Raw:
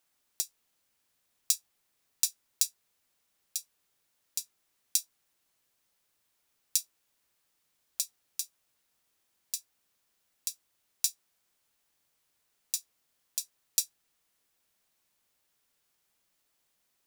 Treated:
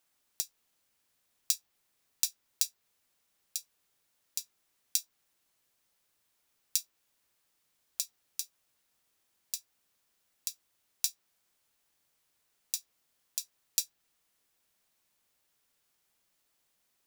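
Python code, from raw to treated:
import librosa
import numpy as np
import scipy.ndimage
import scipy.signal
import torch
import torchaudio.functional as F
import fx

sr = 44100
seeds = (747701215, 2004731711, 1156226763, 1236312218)

y = fx.dynamic_eq(x, sr, hz=9600.0, q=0.89, threshold_db=-44.0, ratio=4.0, max_db=-6)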